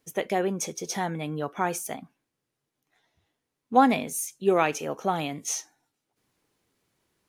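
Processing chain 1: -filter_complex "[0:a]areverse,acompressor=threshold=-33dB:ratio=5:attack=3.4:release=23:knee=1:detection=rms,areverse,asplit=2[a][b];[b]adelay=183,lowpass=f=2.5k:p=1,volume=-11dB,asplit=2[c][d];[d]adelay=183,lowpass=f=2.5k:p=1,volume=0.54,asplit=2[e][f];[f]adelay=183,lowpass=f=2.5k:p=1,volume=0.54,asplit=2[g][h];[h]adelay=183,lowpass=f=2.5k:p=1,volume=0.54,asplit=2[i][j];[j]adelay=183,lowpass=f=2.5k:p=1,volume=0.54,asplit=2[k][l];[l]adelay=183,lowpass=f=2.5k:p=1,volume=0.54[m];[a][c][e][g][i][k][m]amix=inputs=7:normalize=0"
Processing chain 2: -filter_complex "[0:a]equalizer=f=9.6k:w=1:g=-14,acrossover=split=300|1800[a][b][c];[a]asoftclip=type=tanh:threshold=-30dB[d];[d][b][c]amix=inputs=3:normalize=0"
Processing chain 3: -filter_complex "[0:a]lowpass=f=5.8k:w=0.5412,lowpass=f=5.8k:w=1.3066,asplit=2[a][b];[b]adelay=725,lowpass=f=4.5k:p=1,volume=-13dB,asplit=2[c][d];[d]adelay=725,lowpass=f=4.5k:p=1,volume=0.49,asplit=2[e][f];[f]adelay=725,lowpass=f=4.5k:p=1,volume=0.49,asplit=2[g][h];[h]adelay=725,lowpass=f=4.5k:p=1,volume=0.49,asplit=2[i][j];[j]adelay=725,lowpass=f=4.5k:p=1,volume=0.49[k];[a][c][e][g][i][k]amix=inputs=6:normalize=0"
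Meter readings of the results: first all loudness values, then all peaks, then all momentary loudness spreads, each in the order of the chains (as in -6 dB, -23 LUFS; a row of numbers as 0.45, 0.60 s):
-35.5, -28.0, -27.5 LUFS; -22.0, -6.0, -6.0 dBFS; 8, 15, 20 LU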